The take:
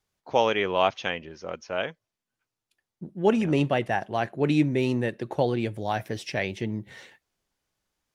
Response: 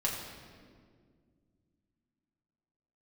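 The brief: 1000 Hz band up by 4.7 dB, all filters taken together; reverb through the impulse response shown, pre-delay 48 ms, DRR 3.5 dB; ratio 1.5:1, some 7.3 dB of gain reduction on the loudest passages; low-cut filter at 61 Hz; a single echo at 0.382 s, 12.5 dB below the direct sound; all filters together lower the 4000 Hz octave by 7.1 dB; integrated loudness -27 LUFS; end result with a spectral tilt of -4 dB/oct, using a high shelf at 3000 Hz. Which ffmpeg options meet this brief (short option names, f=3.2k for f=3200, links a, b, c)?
-filter_complex "[0:a]highpass=61,equalizer=f=1k:t=o:g=7,highshelf=f=3k:g=-4,equalizer=f=4k:t=o:g=-8,acompressor=threshold=-34dB:ratio=1.5,aecho=1:1:382:0.237,asplit=2[a][b];[1:a]atrim=start_sample=2205,adelay=48[c];[b][c]afir=irnorm=-1:irlink=0,volume=-9dB[d];[a][d]amix=inputs=2:normalize=0,volume=2.5dB"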